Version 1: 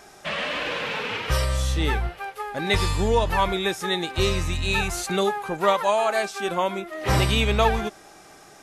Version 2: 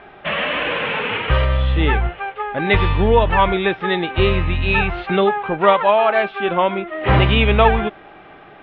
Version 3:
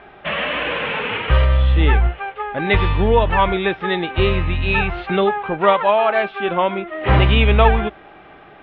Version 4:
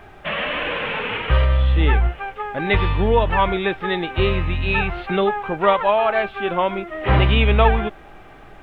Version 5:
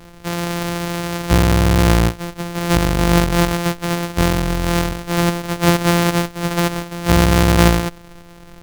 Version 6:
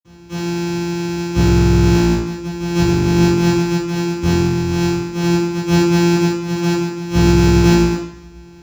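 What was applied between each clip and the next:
steep low-pass 3300 Hz 48 dB/oct; gain +7 dB
bell 61 Hz +6 dB 0.3 oct; gain -1 dB
added noise brown -43 dBFS; gain -2 dB
sample sorter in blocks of 256 samples; gain +2 dB
reverb RT60 0.70 s, pre-delay 46 ms; gain -18 dB

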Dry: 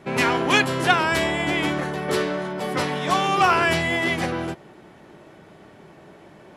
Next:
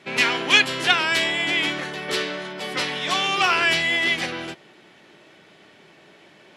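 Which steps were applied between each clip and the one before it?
weighting filter D; gain -5 dB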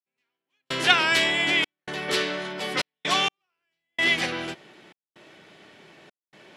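step gate "...xxxx.xxxx.x" 64 bpm -60 dB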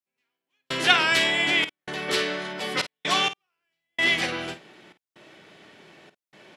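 doubler 50 ms -12.5 dB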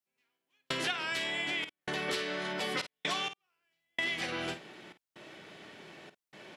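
compressor 8:1, threshold -31 dBFS, peak gain reduction 18.5 dB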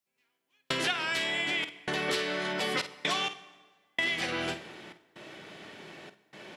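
reverb RT60 1.5 s, pre-delay 63 ms, DRR 17 dB; gain +3.5 dB

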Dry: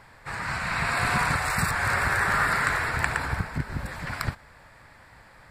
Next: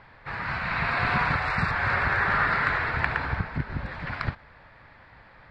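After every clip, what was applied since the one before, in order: LPF 4000 Hz 24 dB/oct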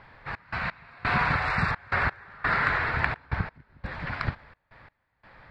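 step gate "xx.x..xx" 86 bpm -24 dB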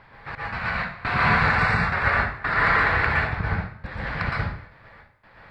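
plate-style reverb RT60 0.55 s, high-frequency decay 0.85×, pre-delay 0.105 s, DRR -4.5 dB

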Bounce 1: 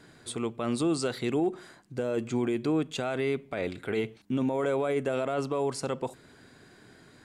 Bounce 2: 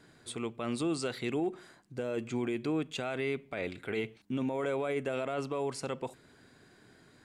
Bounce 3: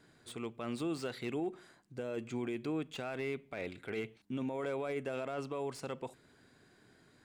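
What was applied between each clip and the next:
dynamic EQ 2400 Hz, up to +5 dB, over -51 dBFS, Q 1.5; gain -5 dB
slew limiter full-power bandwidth 53 Hz; gain -4.5 dB

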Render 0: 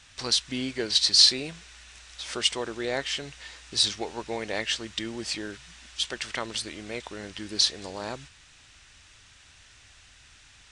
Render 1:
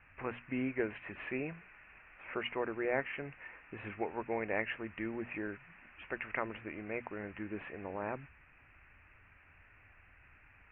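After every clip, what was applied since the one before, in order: steep low-pass 2600 Hz 96 dB/oct; notches 60/120/180/240 Hz; gain -3.5 dB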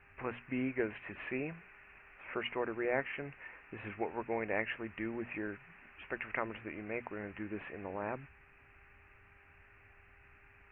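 buzz 400 Hz, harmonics 4, -73 dBFS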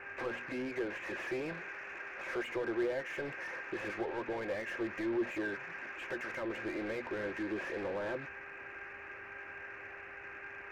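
compressor 6:1, threshold -38 dBFS, peak gain reduction 11 dB; overdrive pedal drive 32 dB, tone 1800 Hz, clips at -25 dBFS; small resonant body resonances 360/520/1600 Hz, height 11 dB, ringing for 50 ms; gain -8 dB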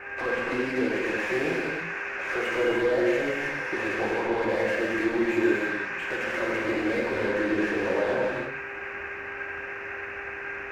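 non-linear reverb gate 0.36 s flat, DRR -4 dB; gain +6.5 dB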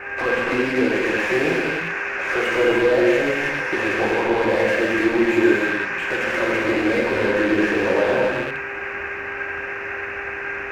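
rattling part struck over -42 dBFS, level -29 dBFS; gain +7 dB

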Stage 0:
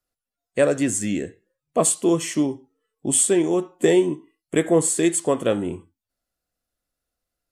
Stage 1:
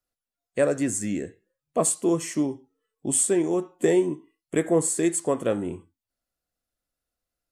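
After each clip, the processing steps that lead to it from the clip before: dynamic EQ 3200 Hz, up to -7 dB, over -46 dBFS, Q 2.1; gain -3.5 dB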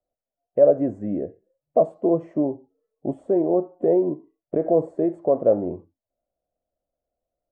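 limiter -15.5 dBFS, peak gain reduction 6.5 dB; synth low-pass 630 Hz, resonance Q 4.9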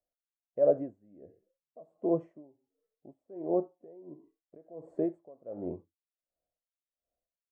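dB-linear tremolo 1.4 Hz, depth 27 dB; gain -7 dB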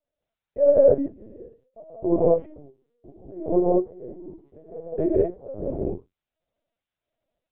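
non-linear reverb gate 0.23 s rising, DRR -5 dB; LPC vocoder at 8 kHz pitch kept; gain +5 dB

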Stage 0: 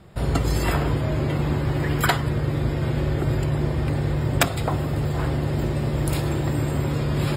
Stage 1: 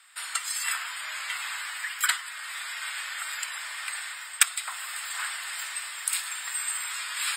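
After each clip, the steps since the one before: inverse Chebyshev high-pass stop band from 410 Hz, stop band 60 dB; bell 8300 Hz +14.5 dB 0.21 oct; vocal rider within 4 dB 0.5 s; gain +2 dB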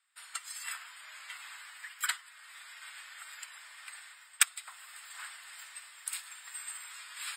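upward expander 1.5:1, over -50 dBFS; gain -4.5 dB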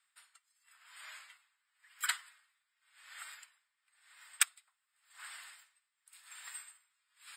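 dB-linear tremolo 0.93 Hz, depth 34 dB

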